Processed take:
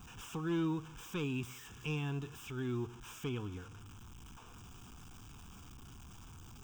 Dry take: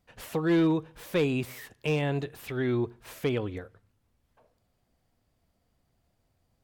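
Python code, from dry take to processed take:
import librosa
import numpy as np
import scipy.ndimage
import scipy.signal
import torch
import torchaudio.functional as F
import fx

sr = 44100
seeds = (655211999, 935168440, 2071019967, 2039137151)

y = x + 0.5 * 10.0 ** (-37.5 / 20.0) * np.sign(x)
y = fx.fixed_phaser(y, sr, hz=2900.0, stages=8)
y = y * librosa.db_to_amplitude(-7.5)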